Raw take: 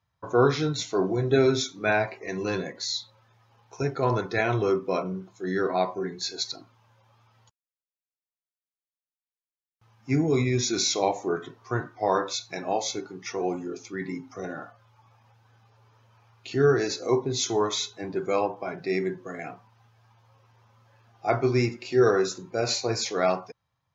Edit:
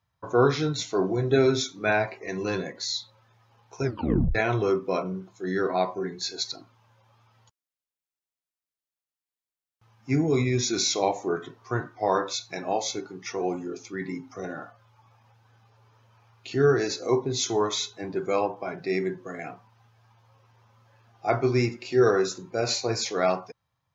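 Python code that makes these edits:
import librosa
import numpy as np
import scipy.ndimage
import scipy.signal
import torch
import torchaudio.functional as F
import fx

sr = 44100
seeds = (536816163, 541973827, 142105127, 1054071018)

y = fx.edit(x, sr, fx.tape_stop(start_s=3.83, length_s=0.52), tone=tone)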